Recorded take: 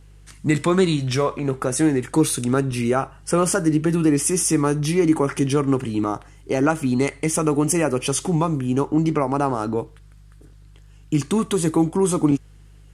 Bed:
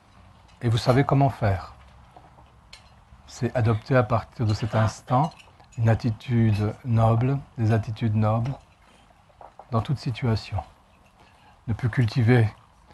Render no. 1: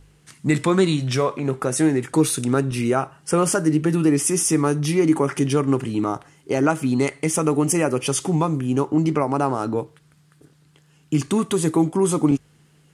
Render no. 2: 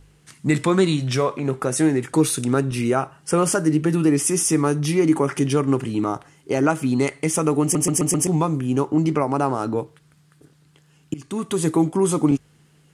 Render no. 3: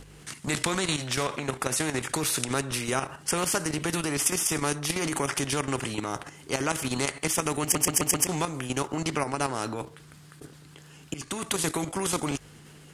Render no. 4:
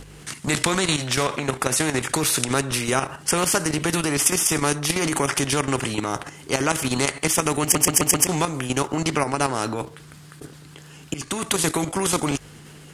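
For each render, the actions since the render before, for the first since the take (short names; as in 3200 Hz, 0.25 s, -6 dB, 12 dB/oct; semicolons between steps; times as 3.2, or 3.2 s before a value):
de-hum 50 Hz, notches 2
7.62 stutter in place 0.13 s, 5 plays; 11.14–11.65 fade in, from -23 dB
level quantiser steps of 10 dB; spectral compressor 2:1
gain +6 dB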